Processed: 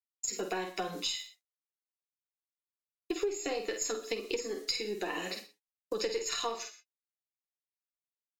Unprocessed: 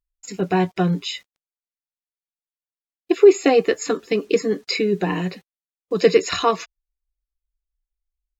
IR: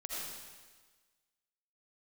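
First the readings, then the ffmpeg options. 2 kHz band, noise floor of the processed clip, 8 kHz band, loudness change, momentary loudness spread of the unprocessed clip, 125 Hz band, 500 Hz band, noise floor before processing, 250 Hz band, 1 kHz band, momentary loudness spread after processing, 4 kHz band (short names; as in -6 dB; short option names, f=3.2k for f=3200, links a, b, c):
-11.5 dB, under -85 dBFS, n/a, -15.5 dB, 14 LU, -27.0 dB, -18.0 dB, under -85 dBFS, -19.5 dB, -14.5 dB, 7 LU, -7.0 dB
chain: -filter_complex "[0:a]bass=f=250:g=-3,treble=f=4k:g=12,flanger=delay=7.8:depth=2.2:regen=34:speed=0.44:shape=triangular,agate=range=-33dB:threshold=-43dB:ratio=3:detection=peak,lowshelf=f=130:g=-10,acrossover=split=200[a][b];[a]acrusher=bits=2:mix=0:aa=0.5[c];[c][b]amix=inputs=2:normalize=0,asplit=2[d][e];[e]adelay=48,volume=-7dB[f];[d][f]amix=inputs=2:normalize=0,aeval=exprs='0.562*(cos(1*acos(clip(val(0)/0.562,-1,1)))-cos(1*PI/2))+0.0141*(cos(4*acos(clip(val(0)/0.562,-1,1)))-cos(4*PI/2))+0.0251*(cos(6*acos(clip(val(0)/0.562,-1,1)))-cos(6*PI/2))':c=same,asplit=2[g][h];[1:a]atrim=start_sample=2205,afade=t=out:st=0.18:d=0.01,atrim=end_sample=8379[i];[h][i]afir=irnorm=-1:irlink=0,volume=-13dB[j];[g][j]amix=inputs=2:normalize=0,acompressor=threshold=-32dB:ratio=6"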